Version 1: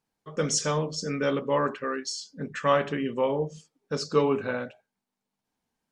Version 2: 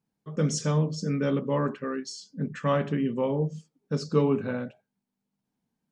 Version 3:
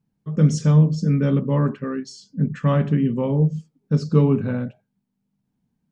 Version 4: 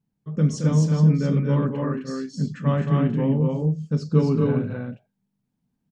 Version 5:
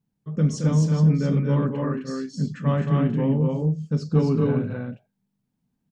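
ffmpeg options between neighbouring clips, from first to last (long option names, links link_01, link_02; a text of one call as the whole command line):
ffmpeg -i in.wav -af "equalizer=frequency=170:width=0.68:gain=13.5,volume=-6dB" out.wav
ffmpeg -i in.wav -af "bass=frequency=250:gain=12,treble=frequency=4000:gain=-3,volume=1dB" out.wav
ffmpeg -i in.wav -af "aecho=1:1:221.6|259.5:0.447|0.794,volume=-4dB" out.wav
ffmpeg -i in.wav -af "asoftclip=type=tanh:threshold=-8dB" out.wav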